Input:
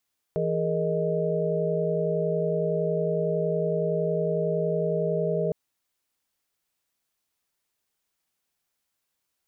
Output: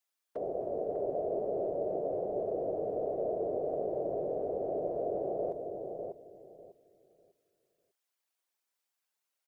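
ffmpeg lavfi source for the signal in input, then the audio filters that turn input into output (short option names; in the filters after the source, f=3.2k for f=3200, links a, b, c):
-f lavfi -i "aevalsrc='0.0376*(sin(2*PI*164.81*t)+sin(2*PI*415.3*t)+sin(2*PI*466.16*t)+sin(2*PI*622.25*t))':d=5.16:s=44100"
-filter_complex "[0:a]highpass=440,afftfilt=real='hypot(re,im)*cos(2*PI*random(0))':imag='hypot(re,im)*sin(2*PI*random(1))':win_size=512:overlap=0.75,asplit=2[a][b];[b]adelay=598,lowpass=f=810:p=1,volume=-3.5dB,asplit=2[c][d];[d]adelay=598,lowpass=f=810:p=1,volume=0.26,asplit=2[e][f];[f]adelay=598,lowpass=f=810:p=1,volume=0.26,asplit=2[g][h];[h]adelay=598,lowpass=f=810:p=1,volume=0.26[i];[c][e][g][i]amix=inputs=4:normalize=0[j];[a][j]amix=inputs=2:normalize=0"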